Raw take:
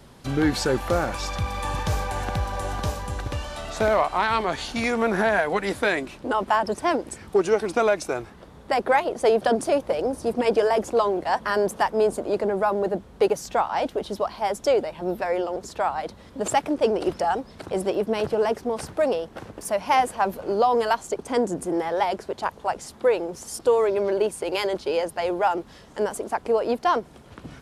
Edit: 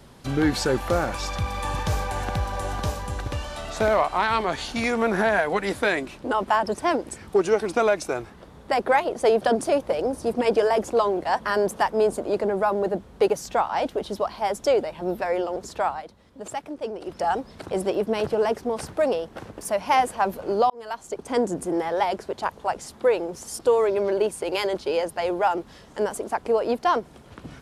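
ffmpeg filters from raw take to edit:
ffmpeg -i in.wav -filter_complex "[0:a]asplit=4[link_01][link_02][link_03][link_04];[link_01]atrim=end=16.05,asetpts=PTS-STARTPTS,afade=type=out:start_time=15.87:duration=0.18:silence=0.316228[link_05];[link_02]atrim=start=16.05:end=17.09,asetpts=PTS-STARTPTS,volume=-10dB[link_06];[link_03]atrim=start=17.09:end=20.7,asetpts=PTS-STARTPTS,afade=type=in:duration=0.18:silence=0.316228,afade=type=out:start_time=3.606:duration=0.004:curve=hsin[link_07];[link_04]atrim=start=20.7,asetpts=PTS-STARTPTS,afade=type=in:duration=0.68[link_08];[link_05][link_06][link_07][link_08]concat=n=4:v=0:a=1" out.wav

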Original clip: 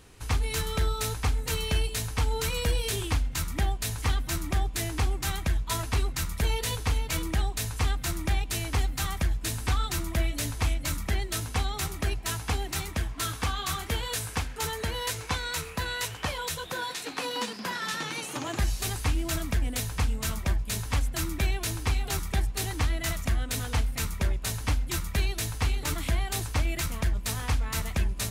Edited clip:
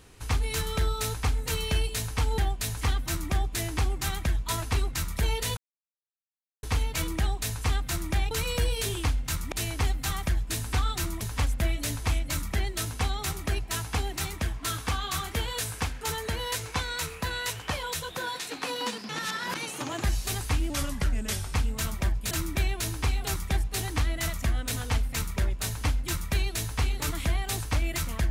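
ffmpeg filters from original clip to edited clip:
ffmpeg -i in.wav -filter_complex "[0:a]asplit=12[link_01][link_02][link_03][link_04][link_05][link_06][link_07][link_08][link_09][link_10][link_11][link_12];[link_01]atrim=end=2.382[link_13];[link_02]atrim=start=3.588:end=6.78,asetpts=PTS-STARTPTS,afade=type=out:start_time=3.188:duration=0.004:curve=hsin,apad=pad_dur=1.06[link_14];[link_03]atrim=start=6.78:end=8.462,asetpts=PTS-STARTPTS,afade=type=in:duration=0.004:curve=hsin[link_15];[link_04]atrim=start=2.378:end=3.592[link_16];[link_05]atrim=start=8.458:end=10.152[link_17];[link_06]atrim=start=20.748:end=21.142[link_18];[link_07]atrim=start=10.148:end=17.642[link_19];[link_08]atrim=start=17.638:end=18.102,asetpts=PTS-STARTPTS,areverse[link_20];[link_09]atrim=start=18.098:end=19.254[link_21];[link_10]atrim=start=19.25:end=19.98,asetpts=PTS-STARTPTS,asetrate=38367,aresample=44100,atrim=end_sample=37003,asetpts=PTS-STARTPTS[link_22];[link_11]atrim=start=19.976:end=20.752[link_23];[link_12]atrim=start=21.138[link_24];[link_14][link_15]concat=n=2:v=0:a=1[link_25];[link_13][link_25]acrossfade=duration=0.004:curve1=hsin:curve2=hsin[link_26];[link_26][link_16]acrossfade=duration=0.004:curve1=hsin:curve2=hsin[link_27];[link_27][link_17]acrossfade=duration=0.004:curve1=hsin:curve2=hsin[link_28];[link_28][link_18]acrossfade=duration=0.004:curve1=hsin:curve2=hsin[link_29];[link_29][link_19]acrossfade=duration=0.004:curve1=hsin:curve2=hsin[link_30];[link_30][link_20]acrossfade=duration=0.004:curve1=hsin:curve2=hsin[link_31];[link_31][link_21]acrossfade=duration=0.004:curve1=hsin:curve2=hsin[link_32];[link_32][link_22]acrossfade=duration=0.004:curve1=hsin:curve2=hsin[link_33];[link_33][link_23]acrossfade=duration=0.004:curve1=hsin:curve2=hsin[link_34];[link_34][link_24]acrossfade=duration=0.004:curve1=hsin:curve2=hsin" out.wav

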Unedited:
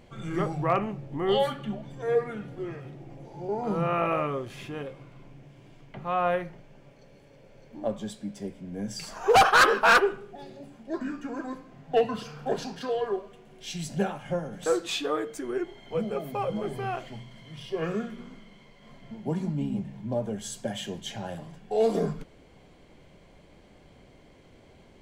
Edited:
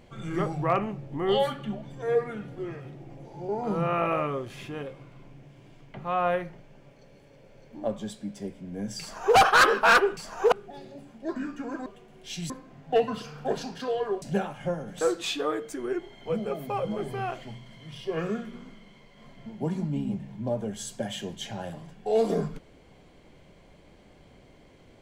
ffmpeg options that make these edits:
ffmpeg -i in.wav -filter_complex "[0:a]asplit=6[link_01][link_02][link_03][link_04][link_05][link_06];[link_01]atrim=end=10.172[link_07];[link_02]atrim=start=9.008:end=9.362[link_08];[link_03]atrim=start=10.168:end=11.512[link_09];[link_04]atrim=start=13.228:end=13.872[link_10];[link_05]atrim=start=11.508:end=13.232[link_11];[link_06]atrim=start=13.868[link_12];[link_07][link_08]acrossfade=duration=0.004:curve1=hsin:curve2=hsin[link_13];[link_13][link_09]acrossfade=duration=0.004:curve1=hsin:curve2=hsin[link_14];[link_14][link_10]acrossfade=duration=0.004:curve1=hsin:curve2=hsin[link_15];[link_15][link_11]acrossfade=duration=0.004:curve1=hsin:curve2=hsin[link_16];[link_16][link_12]acrossfade=duration=0.004:curve1=hsin:curve2=hsin" out.wav

